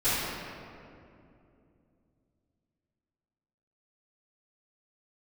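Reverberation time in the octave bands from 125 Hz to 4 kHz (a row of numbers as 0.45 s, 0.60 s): 3.8 s, 3.7 s, 3.0 s, 2.3 s, 1.9 s, 1.4 s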